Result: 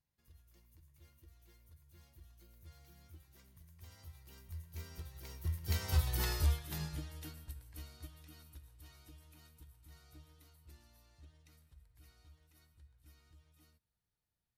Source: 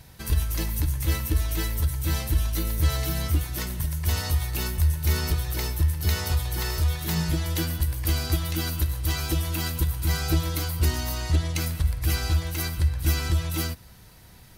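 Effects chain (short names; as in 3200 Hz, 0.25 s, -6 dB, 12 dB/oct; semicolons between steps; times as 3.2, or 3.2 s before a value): Doppler pass-by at 6.18, 21 m/s, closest 6.5 m; upward expander 1.5:1, over -40 dBFS; gain -3.5 dB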